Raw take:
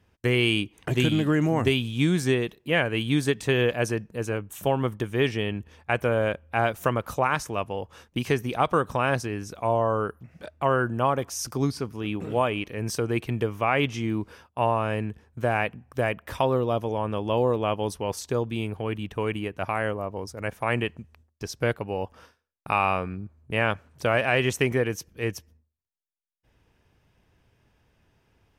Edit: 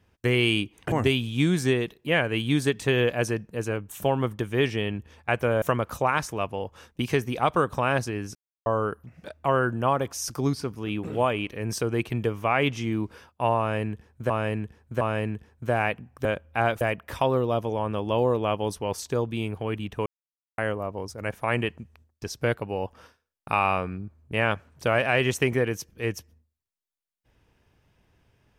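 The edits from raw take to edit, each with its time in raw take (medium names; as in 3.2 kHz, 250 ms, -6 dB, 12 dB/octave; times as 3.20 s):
0.92–1.53 s: delete
6.23–6.79 s: move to 16.00 s
9.52–9.83 s: mute
14.76–15.47 s: loop, 3 plays
19.25–19.77 s: mute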